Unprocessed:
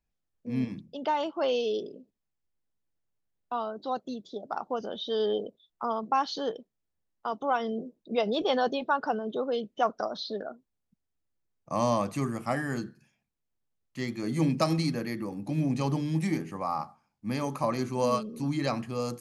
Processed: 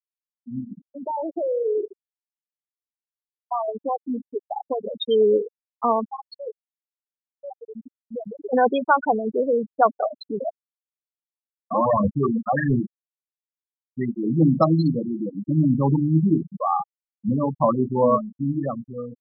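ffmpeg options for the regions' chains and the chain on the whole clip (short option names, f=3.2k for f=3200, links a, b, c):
-filter_complex "[0:a]asettb=1/sr,asplit=3[a][b][c];[a]atrim=end=0.604[d];[b]atrim=start=0.6:end=4.93,asetpts=PTS-STARTPTS,afade=t=in:d=0.004:c=qsin,afade=t=out:st=4.326:d=0.004:c=qsin,acompressor=threshold=-29dB:ratio=5:attack=3.2:release=140:knee=1:detection=peak,aecho=1:1:87|174|261|348:0.299|0.119|0.0478|0.0191,atrim=end_sample=190953[e];[c]atrim=start=4.926[f];[d][e]acrossfade=d=0.004:c1=hsin:c2=qsin[g];[g][f]acrossfade=d=0.004:c1=qsin:c2=hsin,asettb=1/sr,asplit=3[h][i][j];[h]atrim=end=6.044[k];[i]atrim=start=6.04:end=8.53,asetpts=PTS-STARTPTS,afade=t=in:d=0.004:c=qsin,afade=t=out:st=2.486:d=0.004:c=qsin,acompressor=threshold=-32dB:ratio=5:attack=3.2:release=140:knee=1:detection=peak,flanger=delay=6.3:depth=4.7:regen=-60:speed=1.5:shape=sinusoidal,aecho=1:1:192|384|576|768:0.0841|0.048|0.0273|0.0156,atrim=end_sample=109809[l];[j]atrim=start=8.526[m];[k][l]acrossfade=d=0.004:c1=hsin:c2=qsin[n];[n][m]acrossfade=d=0.004:c1=qsin:c2=hsin,asettb=1/sr,asplit=3[o][p][q];[o]atrim=end=10.054[r];[p]atrim=start=10.05:end=12.8,asetpts=PTS-STARTPTS,afade=t=in:d=0.004:c=qsin,afade=t=out:st=2.746:d=0.004:c=qsin,aphaser=in_gain=1:out_gain=1:delay=4.3:decay=0.58:speed=1.5:type=triangular,aemphasis=mode=reproduction:type=cd,asoftclip=type=hard:threshold=-26dB[s];[q]atrim=start=12.796[t];[r][s]acrossfade=d=0.004:c1=hsin:c2=qsin[u];[u][t]acrossfade=d=0.004:c1=qsin:c2=hsin,afftfilt=real='re*gte(hypot(re,im),0.1)':imag='im*gte(hypot(re,im),0.1)':win_size=1024:overlap=0.75,dynaudnorm=f=270:g=9:m=13dB,volume=-2dB"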